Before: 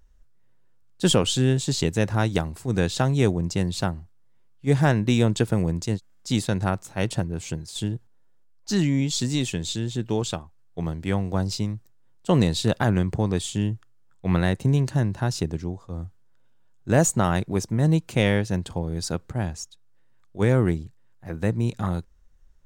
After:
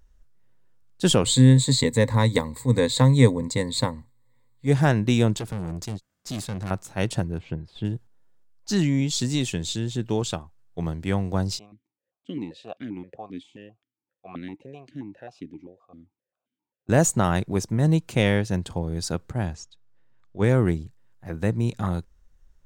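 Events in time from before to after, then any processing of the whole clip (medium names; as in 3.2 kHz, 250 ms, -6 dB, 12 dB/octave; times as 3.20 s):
1.25–4.67 s: rippled EQ curve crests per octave 1, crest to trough 16 dB
5.37–6.71 s: valve stage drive 27 dB, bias 0.5
7.38–7.85 s: distance through air 430 m
11.59–16.89 s: stepped vowel filter 7.6 Hz
19.55–20.44 s: distance through air 93 m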